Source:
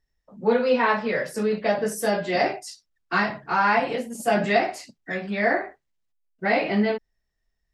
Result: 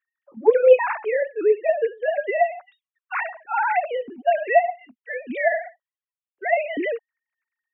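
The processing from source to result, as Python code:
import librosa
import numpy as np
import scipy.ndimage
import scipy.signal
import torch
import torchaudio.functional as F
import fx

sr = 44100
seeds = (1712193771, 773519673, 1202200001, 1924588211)

y = fx.sine_speech(x, sr)
y = y * 10.0 ** (2.0 / 20.0)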